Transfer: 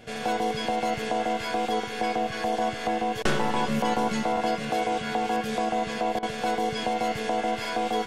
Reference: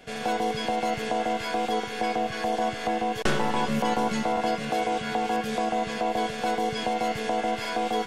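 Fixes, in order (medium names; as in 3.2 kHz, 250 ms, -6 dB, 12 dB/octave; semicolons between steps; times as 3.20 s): de-hum 116.5 Hz, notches 5; interpolate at 6.19 s, 37 ms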